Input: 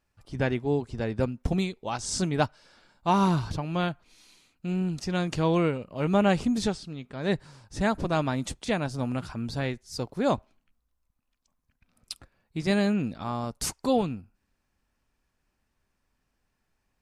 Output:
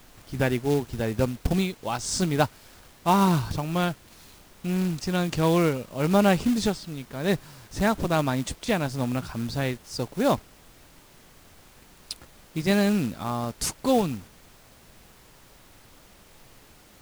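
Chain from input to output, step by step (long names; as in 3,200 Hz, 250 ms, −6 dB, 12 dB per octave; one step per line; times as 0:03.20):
bit reduction 9 bits
background noise pink −55 dBFS
floating-point word with a short mantissa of 2 bits
level +2.5 dB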